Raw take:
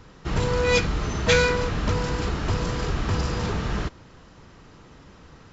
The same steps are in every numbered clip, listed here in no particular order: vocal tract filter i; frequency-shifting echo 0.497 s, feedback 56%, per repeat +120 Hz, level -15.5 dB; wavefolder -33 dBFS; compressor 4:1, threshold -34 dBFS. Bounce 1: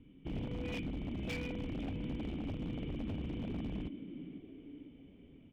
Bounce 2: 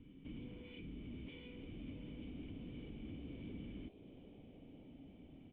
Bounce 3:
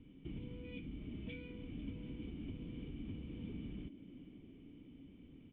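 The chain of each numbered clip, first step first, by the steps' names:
frequency-shifting echo > vocal tract filter > compressor > wavefolder; compressor > wavefolder > vocal tract filter > frequency-shifting echo; compressor > frequency-shifting echo > vocal tract filter > wavefolder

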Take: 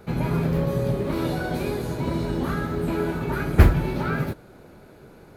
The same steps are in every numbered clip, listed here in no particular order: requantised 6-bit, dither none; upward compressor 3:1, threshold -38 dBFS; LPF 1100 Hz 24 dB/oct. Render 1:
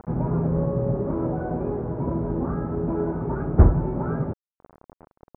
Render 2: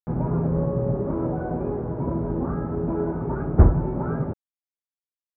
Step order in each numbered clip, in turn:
upward compressor > requantised > LPF; requantised > upward compressor > LPF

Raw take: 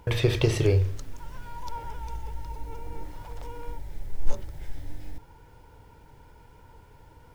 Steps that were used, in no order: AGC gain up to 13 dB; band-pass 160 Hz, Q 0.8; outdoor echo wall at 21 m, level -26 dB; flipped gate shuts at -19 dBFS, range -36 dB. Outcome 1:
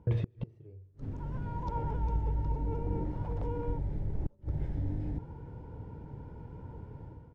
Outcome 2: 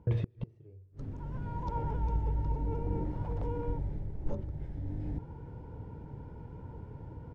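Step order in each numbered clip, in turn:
band-pass > AGC > outdoor echo > flipped gate; outdoor echo > AGC > band-pass > flipped gate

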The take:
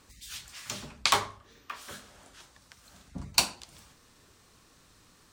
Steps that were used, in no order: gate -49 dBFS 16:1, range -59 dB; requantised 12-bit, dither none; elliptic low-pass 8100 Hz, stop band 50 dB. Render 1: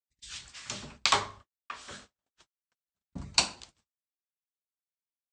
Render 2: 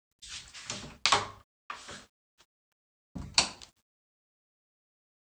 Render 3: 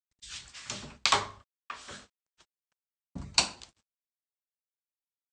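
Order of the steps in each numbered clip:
requantised > gate > elliptic low-pass; gate > elliptic low-pass > requantised; gate > requantised > elliptic low-pass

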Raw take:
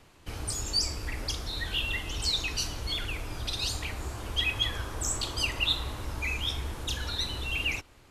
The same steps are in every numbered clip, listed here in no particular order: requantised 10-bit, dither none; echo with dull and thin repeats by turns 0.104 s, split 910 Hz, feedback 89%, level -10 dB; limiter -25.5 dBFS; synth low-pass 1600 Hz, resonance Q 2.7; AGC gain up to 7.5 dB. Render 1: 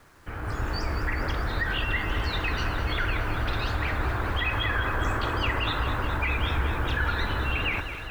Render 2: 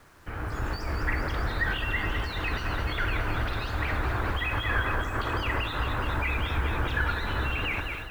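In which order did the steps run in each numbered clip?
synth low-pass > requantised > limiter > AGC > echo with dull and thin repeats by turns; echo with dull and thin repeats by turns > limiter > synth low-pass > requantised > AGC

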